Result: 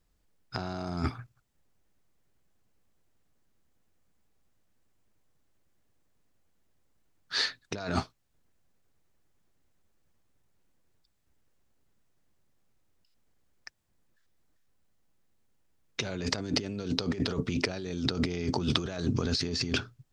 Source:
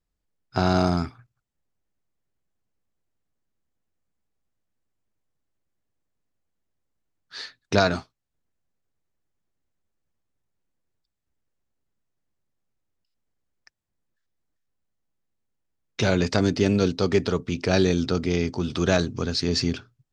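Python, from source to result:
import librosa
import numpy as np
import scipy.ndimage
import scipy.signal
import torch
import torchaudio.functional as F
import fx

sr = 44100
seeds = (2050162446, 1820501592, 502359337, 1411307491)

y = fx.over_compress(x, sr, threshold_db=-32.0, ratio=-1.0)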